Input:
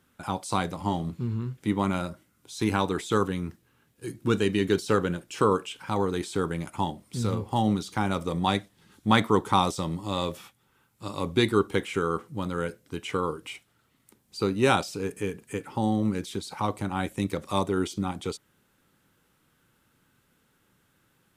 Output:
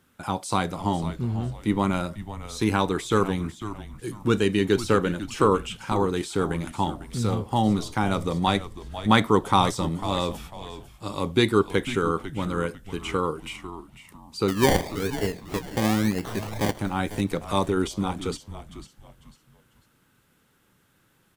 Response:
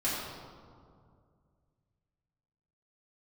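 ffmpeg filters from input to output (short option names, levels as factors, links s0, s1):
-filter_complex "[0:a]asettb=1/sr,asplit=3[s0][s1][s2];[s0]atrim=end=14.484[s3];[s1]atrim=start=14.48:end=16.79,asetpts=PTS-STARTPTS,afade=t=in:d=0.004:c=qsin,afade=t=out:st=2.306:d=0.004:c=qsin,acrusher=samples=26:mix=1:aa=0.000001:lfo=1:lforange=15.6:lforate=1[s4];[s2]atrim=start=16.786[s5];[s3][s4]acrossfade=d=0.004:c1=hsin:c2=qsin[s6];[s6][s5]acrossfade=d=0.004:c1=qsin:c2=hsin,asplit=4[s7][s8][s9][s10];[s8]adelay=498,afreqshift=-110,volume=0.237[s11];[s9]adelay=996,afreqshift=-220,volume=0.0759[s12];[s10]adelay=1494,afreqshift=-330,volume=0.0243[s13];[s7][s11][s12][s13]amix=inputs=4:normalize=0,volume=1.33"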